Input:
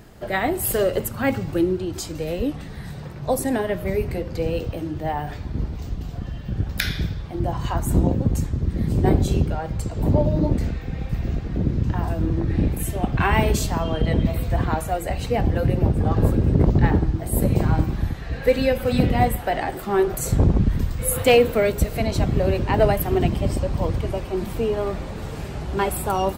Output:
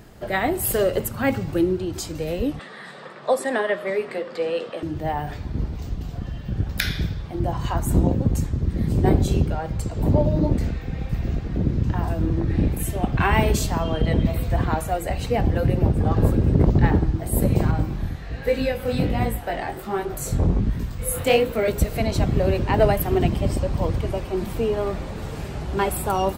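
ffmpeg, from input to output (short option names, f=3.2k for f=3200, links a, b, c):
-filter_complex "[0:a]asettb=1/sr,asplit=3[a][b][c];[a]atrim=end=2.594[d];[b]atrim=start=2.59:end=4.83,asetpts=PTS-STARTPTS,afade=t=in:d=0.004:c=qsin,afade=t=out:st=2.236:d=0.004:c=qsin,highpass=f=240:w=0.5412,highpass=f=240:w=1.3066,equalizer=f=290:t=q:w=4:g=-9,equalizer=f=560:t=q:w=4:g=4,equalizer=f=1.2k:t=q:w=4:g=9,equalizer=f=1.8k:t=q:w=4:g=7,equalizer=f=3.4k:t=q:w=4:g=5,equalizer=f=6.2k:t=q:w=4:g=-8,lowpass=f=9k:w=0.5412,lowpass=f=9k:w=1.3066[e];[c]atrim=start=4.826[f];[d][e]acrossfade=d=0.004:c1=hsin:c2=qsin[g];[g][f]acrossfade=d=0.004:c1=qsin:c2=hsin,asettb=1/sr,asplit=3[h][i][j];[h]atrim=end=17.714[k];[i]atrim=start=17.71:end=21.68,asetpts=PTS-STARTPTS,afade=t=in:d=0.004:c=qsin,afade=t=out:st=3.966:d=0.004:c=qsin,flanger=delay=17:depth=7.3:speed=1.3[l];[j]atrim=start=21.676[m];[k][l]acrossfade=d=0.004:c1=hsin:c2=qsin[n];[n][m]acrossfade=d=0.004:c1=qsin:c2=hsin"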